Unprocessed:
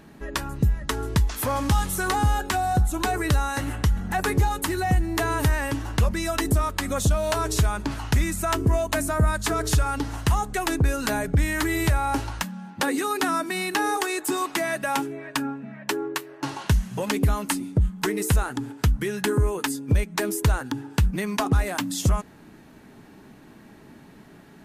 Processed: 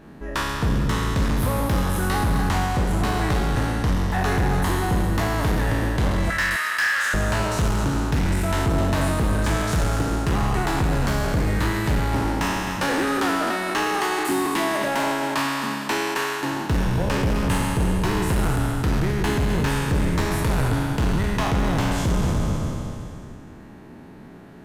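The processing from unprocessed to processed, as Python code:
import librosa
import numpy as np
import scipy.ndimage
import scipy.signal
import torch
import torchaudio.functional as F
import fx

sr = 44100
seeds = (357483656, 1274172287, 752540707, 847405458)

p1 = fx.spec_trails(x, sr, decay_s=2.52)
p2 = fx.high_shelf(p1, sr, hz=2300.0, db=-9.5)
p3 = fx.hpss(p2, sr, part='percussive', gain_db=5)
p4 = fx.rider(p3, sr, range_db=4, speed_s=0.5)
p5 = p3 + F.gain(torch.from_numpy(p4), 0.5).numpy()
p6 = fx.highpass_res(p5, sr, hz=1700.0, q=5.1, at=(6.3, 7.14))
p7 = np.clip(10.0 ** (9.0 / 20.0) * p6, -1.0, 1.0) / 10.0 ** (9.0 / 20.0)
p8 = p7 + fx.echo_single(p7, sr, ms=260, db=-10.5, dry=0)
y = F.gain(torch.from_numpy(p8), -9.0).numpy()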